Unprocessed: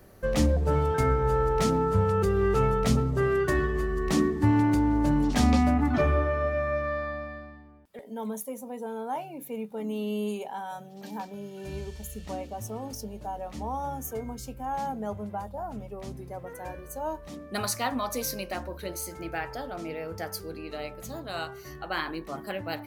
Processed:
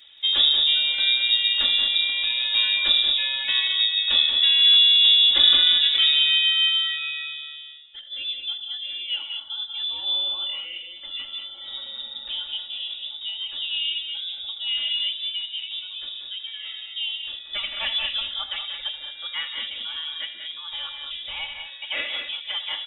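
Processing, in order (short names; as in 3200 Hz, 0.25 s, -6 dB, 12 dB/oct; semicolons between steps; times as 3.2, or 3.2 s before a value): inverted band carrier 3700 Hz; comb 3.5 ms, depth 84%; tapped delay 73/82/125/172/180/217 ms -18/-14.5/-20/-18.5/-8/-8.5 dB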